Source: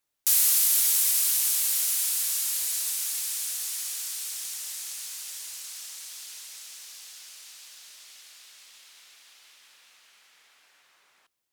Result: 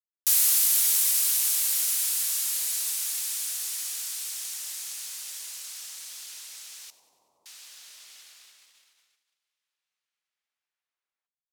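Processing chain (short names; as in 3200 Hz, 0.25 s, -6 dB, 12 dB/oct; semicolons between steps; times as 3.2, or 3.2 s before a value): gate -50 dBFS, range -31 dB; 6.9–7.46 elliptic low-pass 990 Hz, stop band 40 dB; on a send: thinning echo 95 ms, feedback 58%, level -18 dB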